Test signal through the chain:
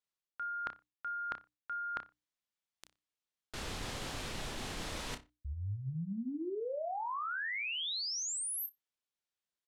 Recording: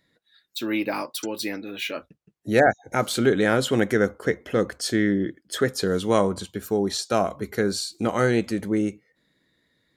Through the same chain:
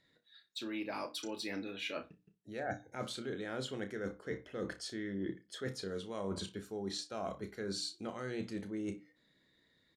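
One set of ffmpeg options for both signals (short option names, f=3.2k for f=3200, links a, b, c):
-filter_complex "[0:a]lowpass=8.3k,equalizer=f=3.5k:t=o:w=0.63:g=3,bandreject=f=60:t=h:w=6,bandreject=f=120:t=h:w=6,bandreject=f=180:t=h:w=6,bandreject=f=240:t=h:w=6,bandreject=f=300:t=h:w=6,areverse,acompressor=threshold=-32dB:ratio=12,areverse,asplit=2[a][b];[b]adelay=31,volume=-9.5dB[c];[a][c]amix=inputs=2:normalize=0,asplit=2[d][e];[e]adelay=60,lowpass=f=3.7k:p=1,volume=-16dB,asplit=2[f][g];[g]adelay=60,lowpass=f=3.7k:p=1,volume=0.2[h];[f][h]amix=inputs=2:normalize=0[i];[d][i]amix=inputs=2:normalize=0,volume=-5dB"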